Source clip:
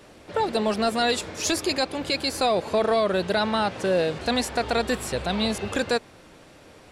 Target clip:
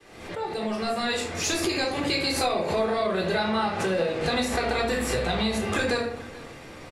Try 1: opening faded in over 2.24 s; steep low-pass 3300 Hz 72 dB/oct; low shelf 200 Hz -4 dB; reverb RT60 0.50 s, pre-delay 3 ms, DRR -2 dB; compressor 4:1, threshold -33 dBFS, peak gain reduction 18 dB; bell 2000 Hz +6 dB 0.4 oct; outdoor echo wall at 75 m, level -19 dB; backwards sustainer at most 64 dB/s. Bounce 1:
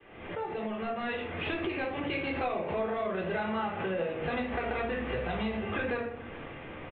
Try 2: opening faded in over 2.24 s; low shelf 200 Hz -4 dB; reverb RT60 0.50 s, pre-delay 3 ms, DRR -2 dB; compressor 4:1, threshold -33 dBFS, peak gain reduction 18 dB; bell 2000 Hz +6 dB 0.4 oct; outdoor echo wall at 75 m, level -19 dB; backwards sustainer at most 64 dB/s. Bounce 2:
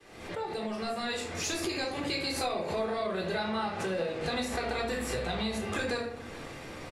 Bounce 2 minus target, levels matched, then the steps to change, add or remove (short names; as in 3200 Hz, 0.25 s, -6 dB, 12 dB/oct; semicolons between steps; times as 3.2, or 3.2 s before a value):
compressor: peak gain reduction +7 dB
change: compressor 4:1, threshold -24 dBFS, peak gain reduction 11.5 dB